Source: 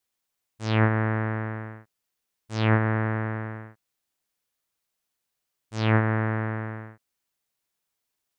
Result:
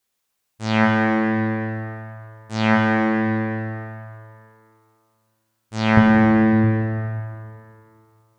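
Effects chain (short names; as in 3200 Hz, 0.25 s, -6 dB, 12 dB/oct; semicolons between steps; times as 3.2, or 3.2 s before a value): 5.97–6.64 low shelf 330 Hz +10 dB; plate-style reverb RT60 2.5 s, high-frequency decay 0.8×, DRR 0 dB; gain +4.5 dB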